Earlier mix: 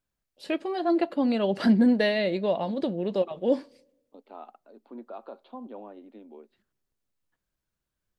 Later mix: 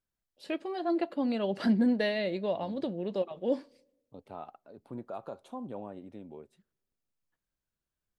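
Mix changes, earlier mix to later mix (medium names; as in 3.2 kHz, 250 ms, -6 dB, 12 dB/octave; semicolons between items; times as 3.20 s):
first voice -5.5 dB; second voice: remove Chebyshev band-pass 220–4600 Hz, order 5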